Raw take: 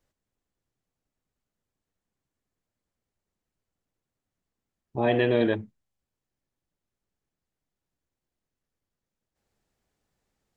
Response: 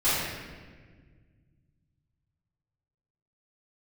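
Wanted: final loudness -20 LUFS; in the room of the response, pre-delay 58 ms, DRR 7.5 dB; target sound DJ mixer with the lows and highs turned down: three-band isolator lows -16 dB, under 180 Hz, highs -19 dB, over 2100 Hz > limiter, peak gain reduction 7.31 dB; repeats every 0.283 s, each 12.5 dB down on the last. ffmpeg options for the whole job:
-filter_complex "[0:a]aecho=1:1:283|566|849:0.237|0.0569|0.0137,asplit=2[a][b];[1:a]atrim=start_sample=2205,adelay=58[c];[b][c]afir=irnorm=-1:irlink=0,volume=-22dB[d];[a][d]amix=inputs=2:normalize=0,acrossover=split=180 2100:gain=0.158 1 0.112[e][f][g];[e][f][g]amix=inputs=3:normalize=0,volume=11dB,alimiter=limit=-8.5dB:level=0:latency=1"

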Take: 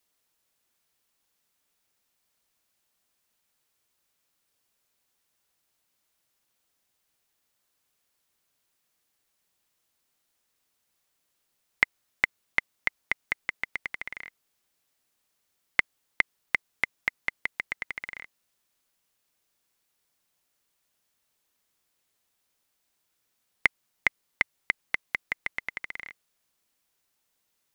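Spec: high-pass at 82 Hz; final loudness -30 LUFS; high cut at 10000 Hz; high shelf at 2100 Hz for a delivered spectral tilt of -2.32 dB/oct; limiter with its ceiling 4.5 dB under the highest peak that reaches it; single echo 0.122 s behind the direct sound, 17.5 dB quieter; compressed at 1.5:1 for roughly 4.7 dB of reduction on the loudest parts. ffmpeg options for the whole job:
-af "highpass=82,lowpass=10k,highshelf=f=2.1k:g=-4,acompressor=threshold=-33dB:ratio=1.5,alimiter=limit=-12.5dB:level=0:latency=1,aecho=1:1:122:0.133,volume=8.5dB"

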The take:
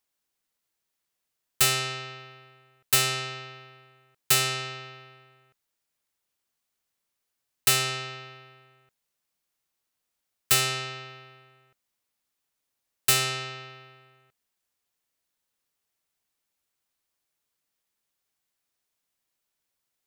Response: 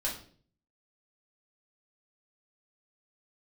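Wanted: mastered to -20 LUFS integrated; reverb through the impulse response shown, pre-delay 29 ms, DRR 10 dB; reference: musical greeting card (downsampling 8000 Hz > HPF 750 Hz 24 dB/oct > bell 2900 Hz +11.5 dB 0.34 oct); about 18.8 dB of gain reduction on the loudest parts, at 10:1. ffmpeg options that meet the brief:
-filter_complex "[0:a]acompressor=threshold=-36dB:ratio=10,asplit=2[a][b];[1:a]atrim=start_sample=2205,adelay=29[c];[b][c]afir=irnorm=-1:irlink=0,volume=-14.5dB[d];[a][d]amix=inputs=2:normalize=0,aresample=8000,aresample=44100,highpass=f=750:w=0.5412,highpass=f=750:w=1.3066,equalizer=f=2.9k:t=o:w=0.34:g=11.5,volume=17.5dB"

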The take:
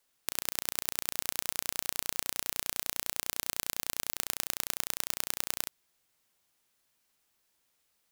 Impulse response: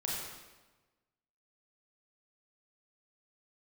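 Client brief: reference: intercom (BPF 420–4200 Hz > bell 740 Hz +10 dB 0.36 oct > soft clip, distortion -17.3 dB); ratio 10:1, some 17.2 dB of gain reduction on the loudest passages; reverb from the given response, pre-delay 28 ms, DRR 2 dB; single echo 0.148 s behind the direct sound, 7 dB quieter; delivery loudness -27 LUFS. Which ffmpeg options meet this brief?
-filter_complex "[0:a]acompressor=threshold=-42dB:ratio=10,aecho=1:1:148:0.447,asplit=2[a][b];[1:a]atrim=start_sample=2205,adelay=28[c];[b][c]afir=irnorm=-1:irlink=0,volume=-6dB[d];[a][d]amix=inputs=2:normalize=0,highpass=420,lowpass=4.2k,equalizer=f=740:t=o:w=0.36:g=10,asoftclip=threshold=-34dB,volume=28.5dB"

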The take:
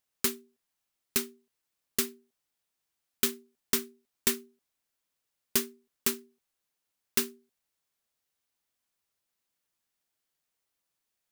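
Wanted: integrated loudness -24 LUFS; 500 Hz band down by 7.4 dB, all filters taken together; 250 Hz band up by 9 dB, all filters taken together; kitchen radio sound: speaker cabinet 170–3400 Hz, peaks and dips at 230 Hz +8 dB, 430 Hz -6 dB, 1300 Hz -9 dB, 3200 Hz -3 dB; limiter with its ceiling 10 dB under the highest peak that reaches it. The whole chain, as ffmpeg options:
-af "equalizer=f=250:t=o:g=5.5,equalizer=f=500:t=o:g=-9,alimiter=limit=-19.5dB:level=0:latency=1,highpass=170,equalizer=f=230:t=q:w=4:g=8,equalizer=f=430:t=q:w=4:g=-6,equalizer=f=1.3k:t=q:w=4:g=-9,equalizer=f=3.2k:t=q:w=4:g=-3,lowpass=f=3.4k:w=0.5412,lowpass=f=3.4k:w=1.3066,volume=15dB"

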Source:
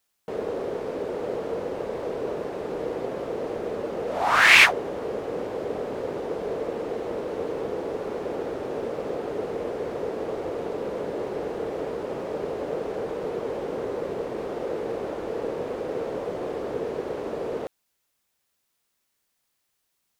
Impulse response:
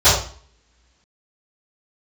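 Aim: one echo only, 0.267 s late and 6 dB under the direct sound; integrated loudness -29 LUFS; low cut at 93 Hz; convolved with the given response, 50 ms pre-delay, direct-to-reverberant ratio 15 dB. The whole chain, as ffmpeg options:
-filter_complex "[0:a]highpass=93,aecho=1:1:267:0.501,asplit=2[a][b];[1:a]atrim=start_sample=2205,adelay=50[c];[b][c]afir=irnorm=-1:irlink=0,volume=-40dB[d];[a][d]amix=inputs=2:normalize=0,volume=-3dB"

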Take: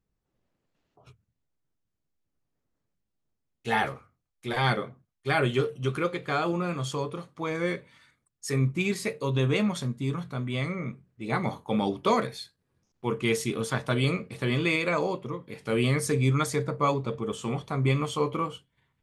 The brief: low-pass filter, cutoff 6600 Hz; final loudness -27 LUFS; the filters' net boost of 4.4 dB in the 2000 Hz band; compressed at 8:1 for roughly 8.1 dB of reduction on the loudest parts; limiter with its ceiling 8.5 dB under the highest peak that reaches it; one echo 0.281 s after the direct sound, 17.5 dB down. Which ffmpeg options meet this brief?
-af "lowpass=6.6k,equalizer=f=2k:t=o:g=5.5,acompressor=threshold=-27dB:ratio=8,alimiter=limit=-23dB:level=0:latency=1,aecho=1:1:281:0.133,volume=7.5dB"

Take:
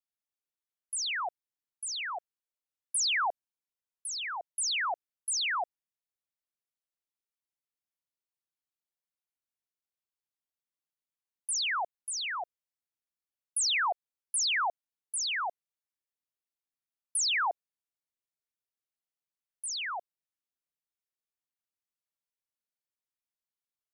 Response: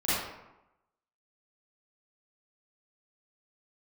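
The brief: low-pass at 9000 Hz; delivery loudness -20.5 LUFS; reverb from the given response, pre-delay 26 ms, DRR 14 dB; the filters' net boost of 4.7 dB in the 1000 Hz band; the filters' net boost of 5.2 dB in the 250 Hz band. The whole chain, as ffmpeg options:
-filter_complex "[0:a]lowpass=9k,equalizer=f=250:t=o:g=7.5,equalizer=f=1k:t=o:g=5.5,asplit=2[a][b];[1:a]atrim=start_sample=2205,adelay=26[c];[b][c]afir=irnorm=-1:irlink=0,volume=-25dB[d];[a][d]amix=inputs=2:normalize=0,volume=9.5dB"

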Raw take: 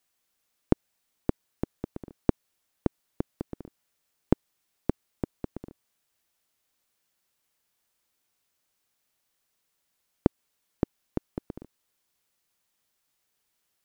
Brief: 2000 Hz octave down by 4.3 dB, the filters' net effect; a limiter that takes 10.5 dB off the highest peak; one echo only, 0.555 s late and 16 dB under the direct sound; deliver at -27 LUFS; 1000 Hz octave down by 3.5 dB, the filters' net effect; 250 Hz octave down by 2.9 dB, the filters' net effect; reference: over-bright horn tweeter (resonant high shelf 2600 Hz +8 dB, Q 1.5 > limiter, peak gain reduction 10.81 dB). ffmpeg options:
-af "equalizer=f=250:t=o:g=-3.5,equalizer=f=1k:t=o:g=-3,equalizer=f=2k:t=o:g=-3.5,alimiter=limit=-15.5dB:level=0:latency=1,highshelf=f=2.6k:t=q:w=1.5:g=8,aecho=1:1:555:0.158,volume=25.5dB,alimiter=limit=-1dB:level=0:latency=1"

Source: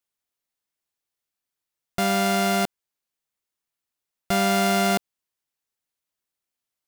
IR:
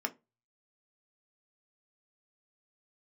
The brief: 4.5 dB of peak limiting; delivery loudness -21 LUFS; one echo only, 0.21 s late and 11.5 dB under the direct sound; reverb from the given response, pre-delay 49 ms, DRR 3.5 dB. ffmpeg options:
-filter_complex "[0:a]alimiter=limit=-17.5dB:level=0:latency=1,aecho=1:1:210:0.266,asplit=2[a][b];[1:a]atrim=start_sample=2205,adelay=49[c];[b][c]afir=irnorm=-1:irlink=0,volume=-7.5dB[d];[a][d]amix=inputs=2:normalize=0,volume=3.5dB"

